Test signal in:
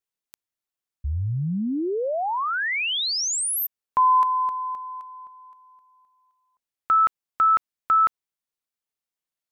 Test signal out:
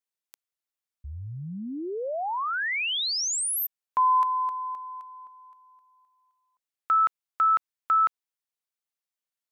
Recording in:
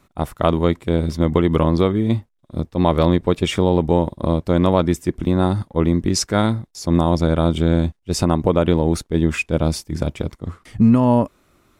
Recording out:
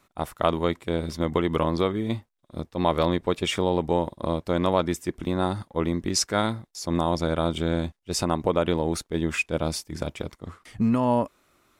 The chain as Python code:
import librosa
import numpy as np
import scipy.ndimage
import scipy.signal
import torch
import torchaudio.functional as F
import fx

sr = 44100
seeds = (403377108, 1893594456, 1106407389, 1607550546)

y = fx.low_shelf(x, sr, hz=350.0, db=-9.5)
y = F.gain(torch.from_numpy(y), -2.5).numpy()